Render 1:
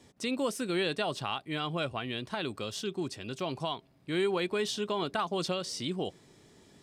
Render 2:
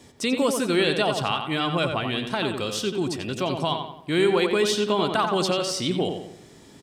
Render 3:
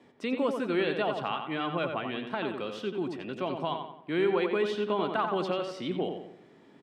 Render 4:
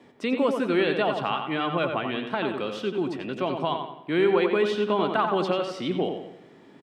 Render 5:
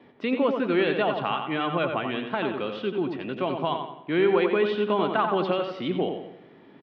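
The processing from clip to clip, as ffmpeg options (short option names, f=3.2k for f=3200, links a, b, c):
-filter_complex "[0:a]highshelf=f=10k:g=4,asplit=2[a][b];[b]adelay=89,lowpass=f=3k:p=1,volume=-5.5dB,asplit=2[c][d];[d]adelay=89,lowpass=f=3k:p=1,volume=0.45,asplit=2[e][f];[f]adelay=89,lowpass=f=3k:p=1,volume=0.45,asplit=2[g][h];[h]adelay=89,lowpass=f=3k:p=1,volume=0.45,asplit=2[i][j];[j]adelay=89,lowpass=f=3k:p=1,volume=0.45[k];[c][e][g][i][k]amix=inputs=5:normalize=0[l];[a][l]amix=inputs=2:normalize=0,volume=8dB"
-filter_complex "[0:a]acrossover=split=150 3000:gain=0.0891 1 0.0794[a][b][c];[a][b][c]amix=inputs=3:normalize=0,volume=-5.5dB"
-af "aecho=1:1:104|208|312|416:0.141|0.0622|0.0273|0.012,volume=5dB"
-af "lowpass=f=3.8k:w=0.5412,lowpass=f=3.8k:w=1.3066"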